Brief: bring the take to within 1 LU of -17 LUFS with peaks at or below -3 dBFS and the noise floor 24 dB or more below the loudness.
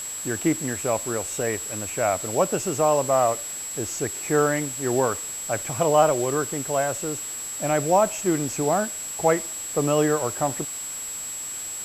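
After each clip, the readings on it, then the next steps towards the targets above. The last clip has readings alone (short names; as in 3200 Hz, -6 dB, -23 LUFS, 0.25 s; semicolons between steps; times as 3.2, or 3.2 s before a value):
steady tone 7700 Hz; tone level -31 dBFS; noise floor -33 dBFS; noise floor target -48 dBFS; loudness -24.0 LUFS; peak -6.0 dBFS; loudness target -17.0 LUFS
-> notch 7700 Hz, Q 30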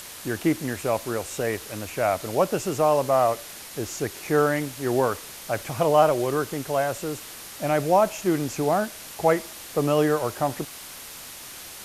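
steady tone none; noise floor -41 dBFS; noise floor target -49 dBFS
-> denoiser 8 dB, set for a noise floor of -41 dBFS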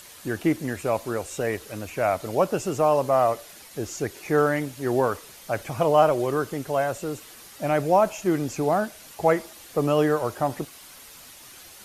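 noise floor -47 dBFS; noise floor target -49 dBFS
-> denoiser 6 dB, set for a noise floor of -47 dBFS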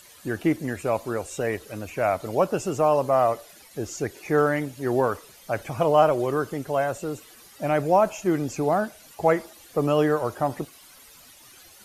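noise floor -50 dBFS; loudness -25.0 LUFS; peak -6.5 dBFS; loudness target -17.0 LUFS
-> gain +8 dB; limiter -3 dBFS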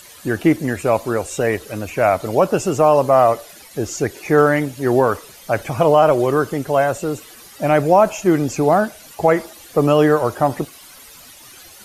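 loudness -17.5 LUFS; peak -3.0 dBFS; noise floor -42 dBFS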